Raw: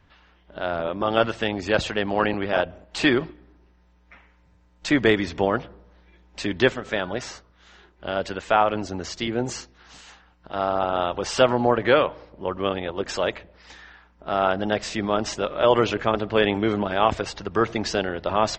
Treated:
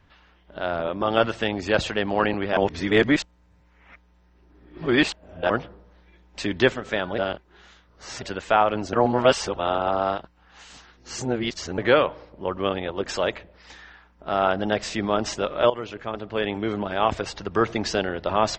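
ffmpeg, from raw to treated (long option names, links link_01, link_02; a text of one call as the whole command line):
ffmpeg -i in.wav -filter_complex "[0:a]asplit=8[link_01][link_02][link_03][link_04][link_05][link_06][link_07][link_08];[link_01]atrim=end=2.572[link_09];[link_02]atrim=start=2.568:end=5.502,asetpts=PTS-STARTPTS,areverse[link_10];[link_03]atrim=start=5.498:end=7.182[link_11];[link_04]atrim=start=7.178:end=8.222,asetpts=PTS-STARTPTS,areverse[link_12];[link_05]atrim=start=8.218:end=8.932[link_13];[link_06]atrim=start=8.928:end=11.782,asetpts=PTS-STARTPTS,areverse[link_14];[link_07]atrim=start=11.778:end=15.7,asetpts=PTS-STARTPTS,afade=type=out:start_time=3.918:duration=0.004:curve=hsin:silence=0.177828[link_15];[link_08]atrim=start=15.7,asetpts=PTS-STARTPTS,afade=type=in:duration=1.78:silence=0.177828[link_16];[link_09][link_10]acrossfade=duration=0.004:curve1=hsin:curve2=hsin[link_17];[link_17][link_11]acrossfade=duration=0.004:curve1=hsin:curve2=hsin[link_18];[link_18][link_12]acrossfade=duration=0.004:curve1=hsin:curve2=hsin[link_19];[link_19][link_13]acrossfade=duration=0.004:curve1=hsin:curve2=hsin[link_20];[link_20][link_14]acrossfade=duration=0.004:curve1=hsin:curve2=hsin[link_21];[link_15][link_16]concat=n=2:v=0:a=1[link_22];[link_21][link_22]acrossfade=duration=0.004:curve1=hsin:curve2=hsin" out.wav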